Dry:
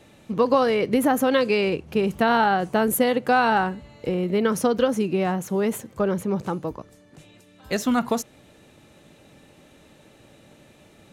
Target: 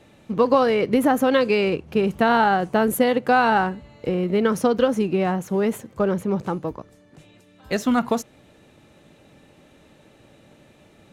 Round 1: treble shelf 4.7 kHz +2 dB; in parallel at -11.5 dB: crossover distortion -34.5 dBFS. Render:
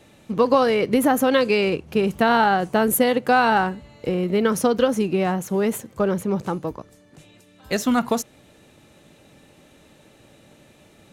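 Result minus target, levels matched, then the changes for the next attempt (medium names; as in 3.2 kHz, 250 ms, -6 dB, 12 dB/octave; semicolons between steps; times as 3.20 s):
8 kHz band +6.0 dB
change: treble shelf 4.7 kHz -5.5 dB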